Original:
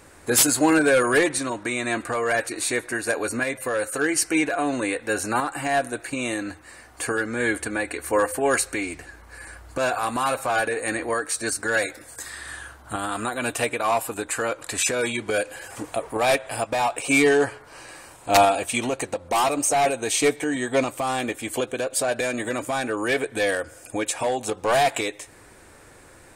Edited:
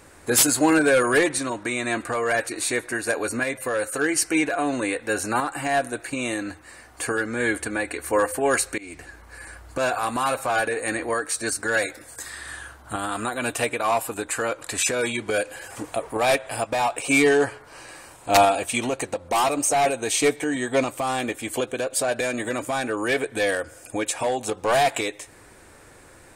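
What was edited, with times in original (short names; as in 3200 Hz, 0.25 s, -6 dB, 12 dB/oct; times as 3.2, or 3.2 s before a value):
8.78–9.04 fade in, from -24 dB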